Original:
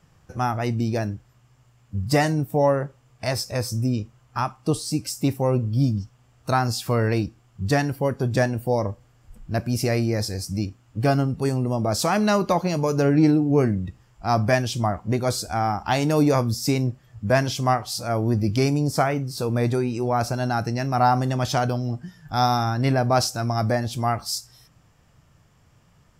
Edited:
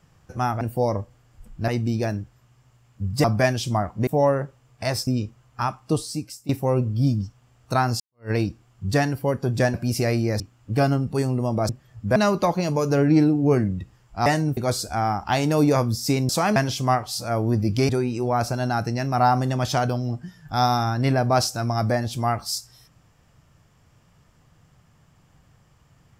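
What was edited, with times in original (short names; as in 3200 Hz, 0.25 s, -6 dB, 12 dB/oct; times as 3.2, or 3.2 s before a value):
2.17–2.48 swap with 14.33–15.16
3.48–3.84 cut
4.7–5.26 fade out, to -19 dB
6.77–7.08 fade in exponential
8.51–9.58 move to 0.61
10.24–10.67 cut
11.96–12.23 swap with 16.88–17.35
18.68–19.69 cut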